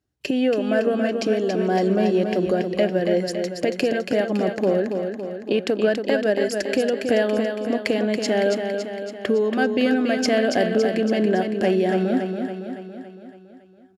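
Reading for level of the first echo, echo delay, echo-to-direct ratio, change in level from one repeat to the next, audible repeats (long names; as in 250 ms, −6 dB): −6.0 dB, 280 ms, −4.5 dB, −5.0 dB, 6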